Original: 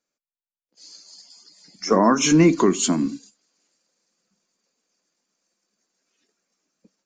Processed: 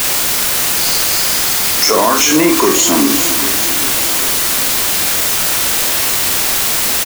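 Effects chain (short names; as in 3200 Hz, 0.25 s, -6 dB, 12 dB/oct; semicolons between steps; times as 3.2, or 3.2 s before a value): HPF 440 Hz 12 dB/oct; compressor 6:1, threshold -30 dBFS, peak gain reduction 14.5 dB; in parallel at -7 dB: overloaded stage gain 29.5 dB; on the sum: requantised 6-bit, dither triangular; doubler 46 ms -6.5 dB; on a send: feedback echo 0.4 s, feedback 60%, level -15 dB; on the sum: maximiser +21.5 dB; gain -1 dB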